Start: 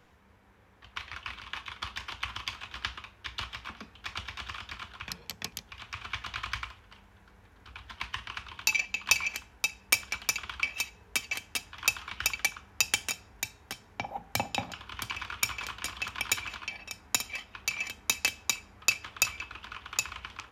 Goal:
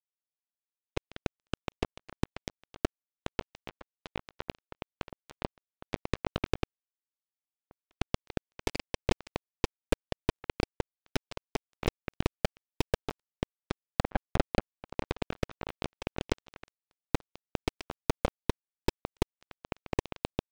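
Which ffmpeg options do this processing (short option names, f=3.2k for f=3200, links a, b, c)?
-af "adynamicequalizer=threshold=0.00126:dfrequency=490:dqfactor=2:tfrequency=490:tqfactor=2:attack=5:release=100:ratio=0.375:range=3.5:mode=boostabove:tftype=bell,lowpass=1.2k,aecho=1:1:257|766:0.15|0.133,acompressor=threshold=-45dB:ratio=2.5,aeval=exprs='0.0473*(cos(1*acos(clip(val(0)/0.0473,-1,1)))-cos(1*PI/2))+0.015*(cos(2*acos(clip(val(0)/0.0473,-1,1)))-cos(2*PI/2))+0.00422*(cos(3*acos(clip(val(0)/0.0473,-1,1)))-cos(3*PI/2))+0.0237*(cos(6*acos(clip(val(0)/0.0473,-1,1)))-cos(6*PI/2))+0.00841*(cos(8*acos(clip(val(0)/0.0473,-1,1)))-cos(8*PI/2))':c=same,lowshelf=f=710:t=q:w=1.5:g=12.5,acrusher=bits=3:mix=0:aa=0.5,volume=3.5dB"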